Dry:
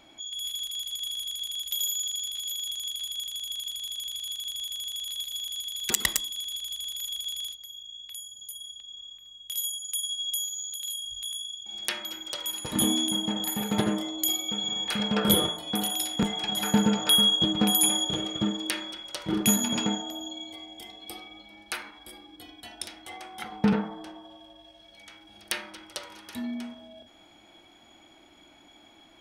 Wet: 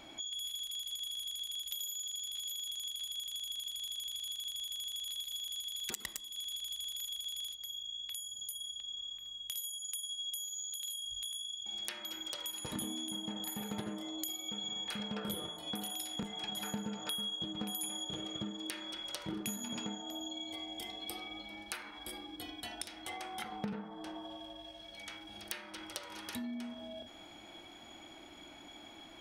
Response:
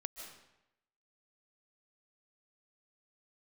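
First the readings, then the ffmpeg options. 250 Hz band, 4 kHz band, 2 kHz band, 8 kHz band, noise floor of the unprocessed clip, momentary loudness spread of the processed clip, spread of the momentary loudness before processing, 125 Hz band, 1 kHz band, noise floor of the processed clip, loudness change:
−13.5 dB, −10.0 dB, −10.5 dB, −11.0 dB, −56 dBFS, 9 LU, 18 LU, −14.5 dB, −10.5 dB, −53 dBFS, −12.0 dB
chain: -af "acompressor=threshold=-42dB:ratio=5,volume=2.5dB"

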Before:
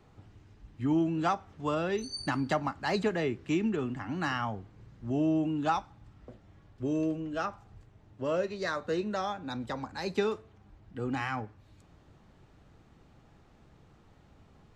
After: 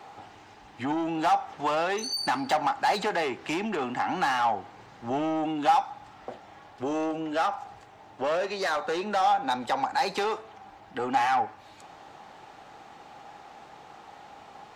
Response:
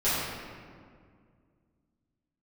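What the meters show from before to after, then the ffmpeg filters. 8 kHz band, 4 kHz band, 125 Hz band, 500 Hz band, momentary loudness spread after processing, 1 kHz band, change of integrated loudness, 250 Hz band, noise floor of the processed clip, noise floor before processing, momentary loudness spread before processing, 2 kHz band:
+8.0 dB, +7.5 dB, −8.0 dB, +2.5 dB, 19 LU, +10.5 dB, +4.5 dB, −1.5 dB, −51 dBFS, −60 dBFS, 9 LU, +5.5 dB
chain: -filter_complex "[0:a]asplit=2[link_01][link_02];[link_02]highpass=frequency=720:poles=1,volume=22dB,asoftclip=type=tanh:threshold=-16dB[link_03];[link_01][link_03]amix=inputs=2:normalize=0,lowpass=frequency=7000:poles=1,volume=-6dB,lowshelf=frequency=210:gain=-8,acompressor=threshold=-31dB:ratio=2,equalizer=frequency=800:width=3.5:gain=11"

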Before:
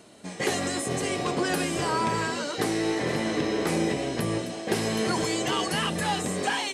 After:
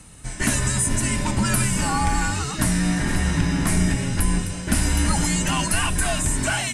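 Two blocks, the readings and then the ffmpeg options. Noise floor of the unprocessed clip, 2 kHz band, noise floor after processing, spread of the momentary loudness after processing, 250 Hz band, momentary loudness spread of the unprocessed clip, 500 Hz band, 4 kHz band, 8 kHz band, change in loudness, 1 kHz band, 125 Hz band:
−38 dBFS, +4.5 dB, −32 dBFS, 3 LU, +4.5 dB, 3 LU, −5.5 dB, +2.0 dB, +10.5 dB, +5.5 dB, +1.5 dB, +11.5 dB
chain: -af "equalizer=frequency=100:width_type=o:width=0.67:gain=8,equalizer=frequency=250:width_type=o:width=0.67:gain=5,equalizer=frequency=630:width_type=o:width=0.67:gain=-12,equalizer=frequency=4000:width_type=o:width=0.67:gain=-6,equalizer=frequency=10000:width_type=o:width=0.67:gain=10,afreqshift=-150,volume=5.5dB"

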